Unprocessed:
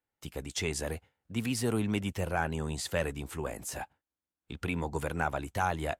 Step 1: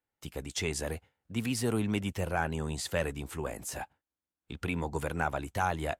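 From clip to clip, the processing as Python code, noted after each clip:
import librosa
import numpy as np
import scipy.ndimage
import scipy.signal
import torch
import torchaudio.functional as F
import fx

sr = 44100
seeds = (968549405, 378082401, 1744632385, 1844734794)

y = x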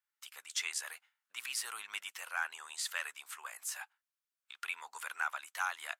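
y = scipy.signal.sosfilt(scipy.signal.cheby1(3, 1.0, 1200.0, 'highpass', fs=sr, output='sos'), x)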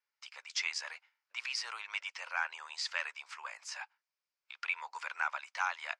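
y = fx.cabinet(x, sr, low_hz=420.0, low_slope=12, high_hz=6000.0, hz=(560.0, 940.0, 2300.0, 3500.0, 5000.0), db=(6, 6, 6, -3, 7))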